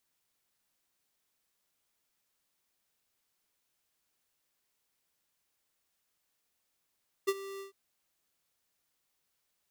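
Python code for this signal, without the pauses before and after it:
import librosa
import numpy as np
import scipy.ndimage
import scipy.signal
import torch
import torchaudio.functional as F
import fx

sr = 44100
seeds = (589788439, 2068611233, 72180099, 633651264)

y = fx.adsr_tone(sr, wave='square', hz=392.0, attack_ms=17.0, decay_ms=44.0, sustain_db=-16.5, held_s=0.33, release_ms=122.0, level_db=-26.0)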